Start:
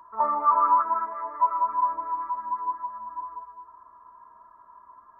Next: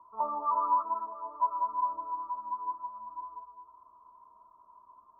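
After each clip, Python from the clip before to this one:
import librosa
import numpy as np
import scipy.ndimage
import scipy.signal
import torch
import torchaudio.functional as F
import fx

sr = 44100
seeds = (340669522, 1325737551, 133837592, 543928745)

y = scipy.signal.sosfilt(scipy.signal.ellip(4, 1.0, 60, 1100.0, 'lowpass', fs=sr, output='sos'), x)
y = y * 10.0 ** (-6.0 / 20.0)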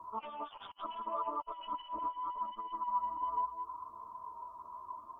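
y = fx.cheby_harmonics(x, sr, harmonics=(3, 4), levels_db=(-7, -42), full_scale_db=-17.5)
y = fx.over_compress(y, sr, threshold_db=-52.0, ratio=-0.5)
y = fx.chorus_voices(y, sr, voices=2, hz=0.75, base_ms=11, depth_ms=2.4, mix_pct=55)
y = y * 10.0 ** (15.0 / 20.0)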